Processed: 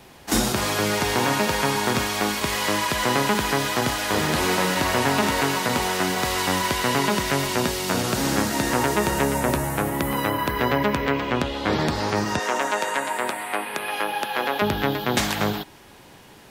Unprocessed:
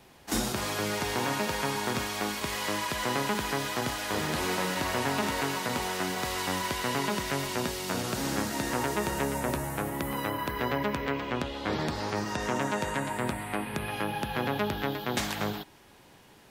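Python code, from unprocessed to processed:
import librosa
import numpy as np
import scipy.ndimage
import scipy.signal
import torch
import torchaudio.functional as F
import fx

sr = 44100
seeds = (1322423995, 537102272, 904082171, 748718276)

y = fx.highpass(x, sr, hz=470.0, slope=12, at=(12.39, 14.62))
y = F.gain(torch.from_numpy(y), 8.0).numpy()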